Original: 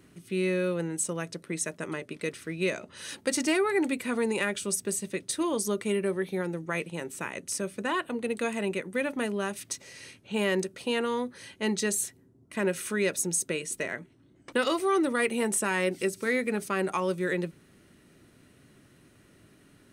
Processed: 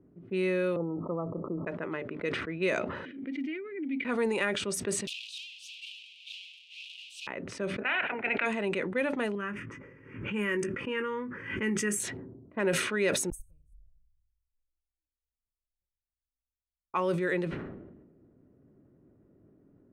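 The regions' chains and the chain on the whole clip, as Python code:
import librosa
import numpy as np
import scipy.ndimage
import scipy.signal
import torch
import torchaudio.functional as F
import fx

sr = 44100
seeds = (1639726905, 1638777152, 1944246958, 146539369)

y = fx.chain(x, sr, fx.cheby1_lowpass(hz=1300.0, order=10),
    fx.env_flatten(amount_pct=50), at=(0.76, 1.67))
y = fx.chain(y, sr, fx.vowel_filter(vowel='i'),
    fx.pre_swell(db_per_s=60.0), at=(3.05, 4.05))
y = fx.chain(y, sr, fx.clip_1bit(),
    fx.steep_highpass(hz=2600.0, slope=96),
    fx.env_flatten(amount_pct=50), at=(5.07, 7.27))
y = fx.spec_clip(y, sr, under_db=20, at=(7.8, 8.45), fade=0.02)
y = fx.cabinet(y, sr, low_hz=240.0, low_slope=12, high_hz=2500.0, hz=(340.0, 540.0, 1100.0, 1500.0, 2400.0), db=(-9, -4, -8, 5, 9), at=(7.8, 8.45), fade=0.02)
y = fx.chain(y, sr, fx.fixed_phaser(hz=1700.0, stages=4),
    fx.doubler(ms=19.0, db=-8.5),
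    fx.pre_swell(db_per_s=45.0), at=(9.35, 12.0))
y = fx.chain(y, sr, fx.cheby2_bandstop(low_hz=190.0, high_hz=4100.0, order=4, stop_db=80),
    fx.echo_single(ms=90, db=-12.0), at=(13.3, 16.94))
y = fx.env_lowpass(y, sr, base_hz=430.0, full_db=-24.5)
y = fx.bass_treble(y, sr, bass_db=-5, treble_db=-10)
y = fx.sustainer(y, sr, db_per_s=44.0)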